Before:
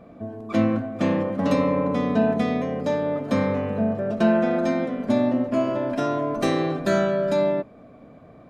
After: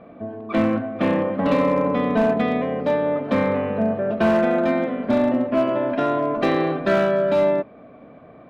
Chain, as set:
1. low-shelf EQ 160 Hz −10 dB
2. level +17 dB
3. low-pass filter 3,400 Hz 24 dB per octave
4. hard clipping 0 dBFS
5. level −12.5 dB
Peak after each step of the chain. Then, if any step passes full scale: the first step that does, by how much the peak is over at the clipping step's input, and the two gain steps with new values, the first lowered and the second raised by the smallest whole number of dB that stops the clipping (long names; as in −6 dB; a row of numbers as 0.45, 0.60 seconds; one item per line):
−10.5, +6.5, +6.5, 0.0, −12.5 dBFS
step 2, 6.5 dB
step 2 +10 dB, step 5 −5.5 dB